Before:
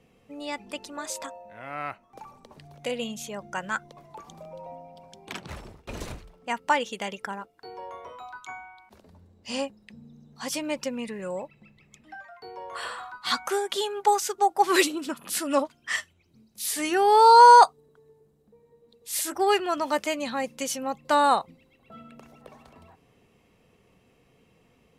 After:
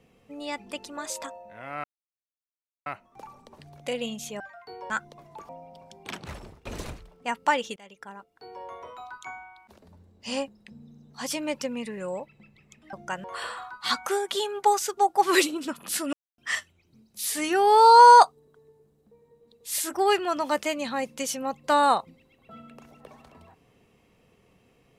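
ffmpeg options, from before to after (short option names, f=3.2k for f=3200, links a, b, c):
-filter_complex "[0:a]asplit=10[a][b][c][d][e][f][g][h][i][j];[a]atrim=end=1.84,asetpts=PTS-STARTPTS,afade=t=out:st=1.836:d=0.004:c=hsin,apad=pad_dur=1.02[k];[b]atrim=start=1.84:end=3.382,asetpts=PTS-STARTPTS,afade=t=in:d=0.004:c=hsin[l];[c]atrim=start=12.148:end=12.652[m];[d]atrim=start=3.688:end=4.282[n];[e]atrim=start=4.708:end=6.98,asetpts=PTS-STARTPTS,afade=t=out:st=2.268:d=0.004:c=hsin:silence=0.0749894[o];[f]atrim=start=6.98:end=12.152,asetpts=PTS-STARTPTS,afade=t=in:d=0.99:silence=0.0749894[p];[g]atrim=start=3.378:end=3.692[q];[h]atrim=start=12.648:end=15.54,asetpts=PTS-STARTPTS,afade=t=out:st=2.888:d=0.004:c=hsin[r];[i]atrim=start=15.54:end=15.79,asetpts=PTS-STARTPTS,volume=0[s];[j]atrim=start=15.79,asetpts=PTS-STARTPTS,afade=t=in:d=0.004:c=hsin[t];[k][l]concat=n=2:v=0:a=1[u];[u][m]acrossfade=d=0.004:c1=hsin:c2=hsin[v];[v][n]acrossfade=d=0.004:c1=hsin:c2=hsin[w];[o][p]concat=n=2:v=0:a=1[x];[w][x]acrossfade=d=0.004:c1=hsin:c2=hsin[y];[y][q]acrossfade=d=0.004:c1=hsin:c2=hsin[z];[r][s][t]concat=n=3:v=0:a=1[aa];[z][aa]acrossfade=d=0.004:c1=hsin:c2=hsin"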